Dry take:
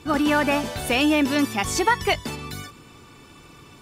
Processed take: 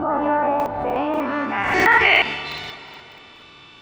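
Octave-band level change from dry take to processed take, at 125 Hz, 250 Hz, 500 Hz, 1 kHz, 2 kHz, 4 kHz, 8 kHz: -3.5 dB, -4.0 dB, +2.5 dB, +5.5 dB, +7.5 dB, +1.5 dB, under -10 dB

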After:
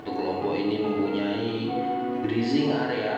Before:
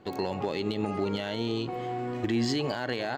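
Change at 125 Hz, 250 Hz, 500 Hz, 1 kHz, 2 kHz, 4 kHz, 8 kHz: 0.0 dB, +5.0 dB, +4.0 dB, +5.0 dB, +2.5 dB, 0.0 dB, n/a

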